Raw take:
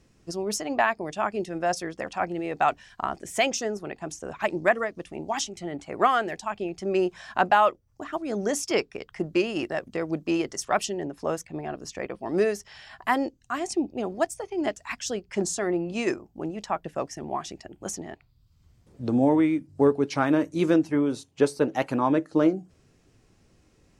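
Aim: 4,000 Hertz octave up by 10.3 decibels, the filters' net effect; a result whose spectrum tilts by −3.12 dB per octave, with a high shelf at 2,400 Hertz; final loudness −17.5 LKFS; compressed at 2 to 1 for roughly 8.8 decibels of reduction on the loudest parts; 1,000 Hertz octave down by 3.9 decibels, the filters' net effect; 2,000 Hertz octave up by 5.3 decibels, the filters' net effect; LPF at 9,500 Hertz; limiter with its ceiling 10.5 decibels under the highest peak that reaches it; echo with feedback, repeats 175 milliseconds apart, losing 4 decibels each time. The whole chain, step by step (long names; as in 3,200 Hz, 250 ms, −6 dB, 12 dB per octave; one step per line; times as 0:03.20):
low-pass filter 9,500 Hz
parametric band 1,000 Hz −8.5 dB
parametric band 2,000 Hz +4 dB
high-shelf EQ 2,400 Hz +8.5 dB
parametric band 4,000 Hz +5.5 dB
downward compressor 2 to 1, threshold −31 dBFS
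brickwall limiter −21.5 dBFS
repeating echo 175 ms, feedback 63%, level −4 dB
level +14 dB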